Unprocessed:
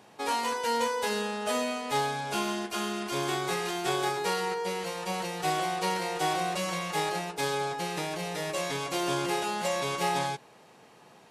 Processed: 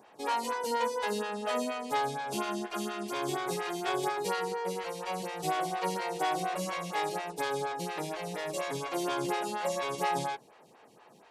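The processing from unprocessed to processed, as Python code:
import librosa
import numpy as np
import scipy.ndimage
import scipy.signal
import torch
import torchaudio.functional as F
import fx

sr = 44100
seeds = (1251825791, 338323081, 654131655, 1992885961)

y = fx.stagger_phaser(x, sr, hz=4.2)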